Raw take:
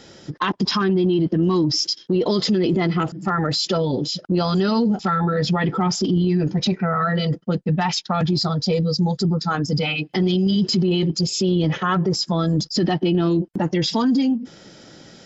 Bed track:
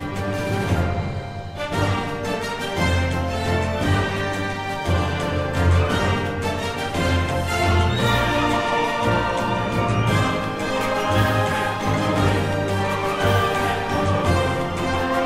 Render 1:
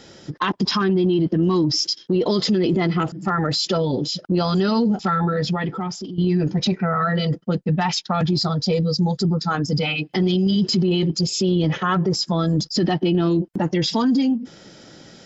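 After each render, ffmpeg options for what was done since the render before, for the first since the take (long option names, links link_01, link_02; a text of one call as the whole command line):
ffmpeg -i in.wav -filter_complex "[0:a]asplit=2[link_01][link_02];[link_01]atrim=end=6.18,asetpts=PTS-STARTPTS,afade=type=out:start_time=5.23:duration=0.95:silence=0.177828[link_03];[link_02]atrim=start=6.18,asetpts=PTS-STARTPTS,afade=type=in:duration=0.004:curve=hsin:silence=0.177828[link_04];[link_03][link_04]concat=n=2:v=0:a=1" out.wav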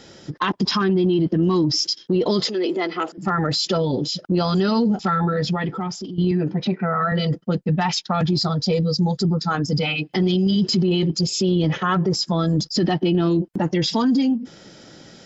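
ffmpeg -i in.wav -filter_complex "[0:a]asettb=1/sr,asplit=3[link_01][link_02][link_03];[link_01]atrim=end=2.444[link_04];[link_02]atrim=start=2.44:end=3.18,asetpts=PTS-STARTPTS,afade=type=in:duration=0.004:curve=qsin,afade=type=out:start_time=0.736:duration=0.004:curve=qsin,highpass=frequency=320:width=0.5412,highpass=frequency=320:width=1.3066[link_05];[link_03]atrim=start=3.176[link_06];[link_04][link_05]acrossfade=duration=0.004:curve1=hsin:curve2=qsin[link_07];[link_07][link_06]acrossfade=duration=0.004:curve1=qsin:curve2=hsin,asettb=1/sr,asplit=3[link_08][link_09][link_10];[link_08]atrim=end=6.314[link_11];[link_09]atrim=start=6.31:end=7.12,asetpts=PTS-STARTPTS,afade=type=in:duration=0.004:curve=qsin,afade=type=out:start_time=0.806:duration=0.004:curve=qsin,highpass=150,lowpass=2800[link_12];[link_10]atrim=start=7.116[link_13];[link_11][link_12]acrossfade=duration=0.004:curve1=hsin:curve2=qsin[link_14];[link_14][link_13]acrossfade=duration=0.004:curve1=qsin:curve2=hsin" out.wav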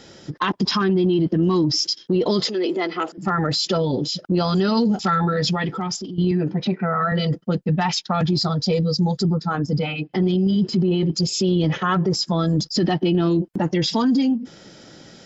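ffmpeg -i in.wav -filter_complex "[0:a]asettb=1/sr,asplit=3[link_01][link_02][link_03];[link_01]atrim=end=4.774[link_04];[link_02]atrim=start=4.77:end=5.97,asetpts=PTS-STARTPTS,afade=type=in:duration=0.004:curve=qsin,afade=type=out:start_time=1.196:duration=0.004:curve=qsin,highshelf=frequency=3200:gain=9[link_05];[link_03]atrim=start=5.966[link_06];[link_04][link_05]acrossfade=duration=0.004:curve1=hsin:curve2=qsin[link_07];[link_07][link_06]acrossfade=duration=0.004:curve1=qsin:curve2=hsin,asettb=1/sr,asplit=3[link_08][link_09][link_10];[link_08]atrim=end=9.374[link_11];[link_09]atrim=start=9.37:end=11.06,asetpts=PTS-STARTPTS,afade=type=in:duration=0.004:curve=qsin,afade=type=out:start_time=1.686:duration=0.004:curve=qsin,highshelf=frequency=2700:gain=-11.5[link_12];[link_10]atrim=start=11.056[link_13];[link_11][link_12]acrossfade=duration=0.004:curve1=hsin:curve2=qsin[link_14];[link_14][link_13]acrossfade=duration=0.004:curve1=qsin:curve2=hsin" out.wav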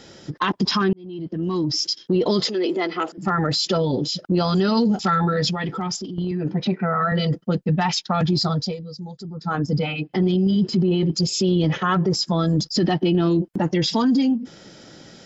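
ffmpeg -i in.wav -filter_complex "[0:a]asettb=1/sr,asplit=3[link_01][link_02][link_03];[link_01]atrim=end=5.484[link_04];[link_02]atrim=start=5.48:end=6.45,asetpts=PTS-STARTPTS,afade=type=in:duration=0.004:curve=qsin,afade=type=out:start_time=0.966:duration=0.004:curve=qsin,acompressor=threshold=-21dB:ratio=6:attack=3.2:release=140:knee=1:detection=peak[link_05];[link_03]atrim=start=6.446[link_06];[link_04][link_05]acrossfade=duration=0.004:curve1=hsin:curve2=qsin[link_07];[link_07][link_06]acrossfade=duration=0.004:curve1=qsin:curve2=hsin,asplit=4[link_08][link_09][link_10][link_11];[link_08]atrim=end=0.93,asetpts=PTS-STARTPTS,afade=type=out:start_time=0.926:duration=0.004:curve=hsin[link_12];[link_09]atrim=start=0.93:end=8.77,asetpts=PTS-STARTPTS,afade=type=in:duration=1.08,afade=type=out:start_time=7.65:duration=0.19:silence=0.188365[link_13];[link_10]atrim=start=8.77:end=9.34,asetpts=PTS-STARTPTS,volume=-14.5dB[link_14];[link_11]atrim=start=9.34,asetpts=PTS-STARTPTS,afade=type=in:duration=0.19:silence=0.188365[link_15];[link_12][link_13][link_14][link_15]concat=n=4:v=0:a=1" out.wav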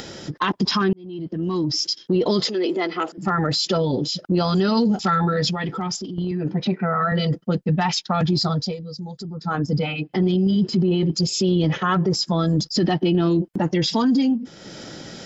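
ffmpeg -i in.wav -af "acompressor=mode=upward:threshold=-28dB:ratio=2.5" out.wav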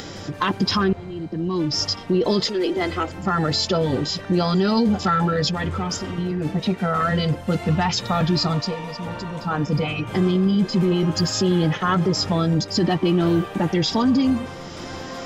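ffmpeg -i in.wav -i bed.wav -filter_complex "[1:a]volume=-13.5dB[link_01];[0:a][link_01]amix=inputs=2:normalize=0" out.wav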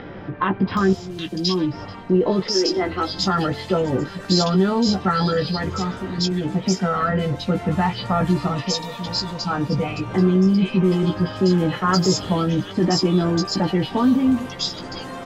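ffmpeg -i in.wav -filter_complex "[0:a]asplit=2[link_01][link_02];[link_02]adelay=16,volume=-6.5dB[link_03];[link_01][link_03]amix=inputs=2:normalize=0,acrossover=split=2600[link_04][link_05];[link_05]adelay=770[link_06];[link_04][link_06]amix=inputs=2:normalize=0" out.wav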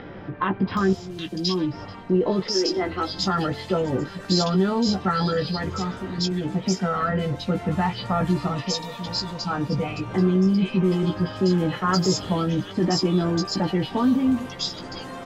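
ffmpeg -i in.wav -af "volume=-3dB" out.wav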